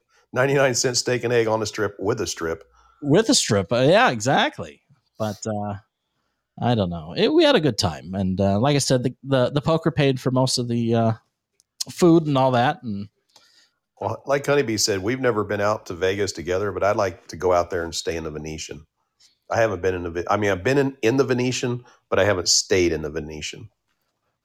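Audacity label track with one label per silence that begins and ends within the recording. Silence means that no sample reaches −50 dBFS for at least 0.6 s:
5.820000	6.580000	silence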